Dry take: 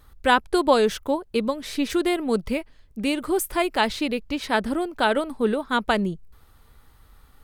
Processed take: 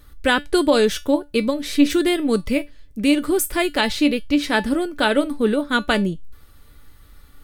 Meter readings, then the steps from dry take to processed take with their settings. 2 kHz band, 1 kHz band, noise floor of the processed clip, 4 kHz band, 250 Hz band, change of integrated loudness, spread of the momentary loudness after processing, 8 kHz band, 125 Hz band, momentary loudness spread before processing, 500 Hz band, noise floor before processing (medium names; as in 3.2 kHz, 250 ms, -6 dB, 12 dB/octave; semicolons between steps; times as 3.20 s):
+4.0 dB, -1.5 dB, -48 dBFS, +5.0 dB, +6.5 dB, +4.0 dB, 6 LU, +6.0 dB, +4.0 dB, 8 LU, +3.0 dB, -55 dBFS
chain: peaking EQ 890 Hz -8 dB 0.9 oct; feedback comb 290 Hz, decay 0.2 s, harmonics all, mix 70%; loudness maximiser +17.5 dB; trim -4 dB